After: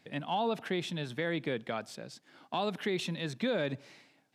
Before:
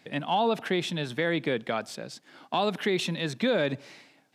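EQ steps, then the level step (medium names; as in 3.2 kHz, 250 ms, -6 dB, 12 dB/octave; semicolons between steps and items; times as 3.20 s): bass shelf 79 Hz +10 dB; -6.5 dB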